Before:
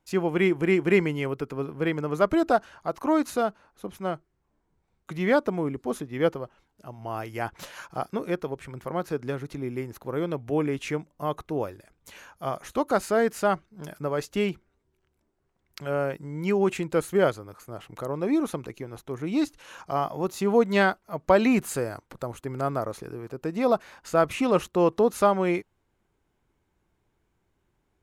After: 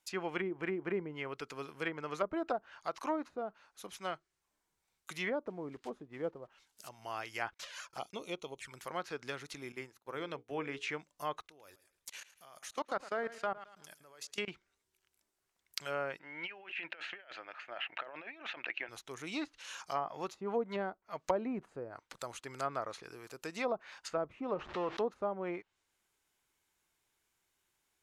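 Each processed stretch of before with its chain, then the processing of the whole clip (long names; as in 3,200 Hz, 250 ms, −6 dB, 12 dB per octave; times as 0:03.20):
0:05.47–0:06.89: one scale factor per block 5 bits + high-shelf EQ 4,200 Hz +7.5 dB
0:07.54–0:08.72: noise gate −53 dBFS, range −30 dB + flanger swept by the level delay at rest 4.1 ms, full sweep at −29 dBFS
0:09.72–0:10.89: mains-hum notches 60/120/180/240/300/360/420/480 Hz + downward expander −35 dBFS + high-shelf EQ 5,000 Hz −10.5 dB
0:11.40–0:14.48: output level in coarse steps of 24 dB + repeating echo 110 ms, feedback 33%, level −16 dB
0:16.19–0:18.89: loudspeaker in its box 440–2,800 Hz, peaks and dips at 440 Hz −9 dB, 660 Hz +5 dB, 1,100 Hz −7 dB, 1,700 Hz +7 dB, 2,700 Hz +9 dB + compressor whose output falls as the input rises −40 dBFS
0:24.54–0:24.97: converter with a step at zero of −29 dBFS + downward compressor 2 to 1, threshold −22 dBFS + high-frequency loss of the air 110 metres
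whole clip: first-order pre-emphasis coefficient 0.97; treble cut that deepens with the level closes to 550 Hz, closed at −37.5 dBFS; high-shelf EQ 8,200 Hz −7.5 dB; level +10.5 dB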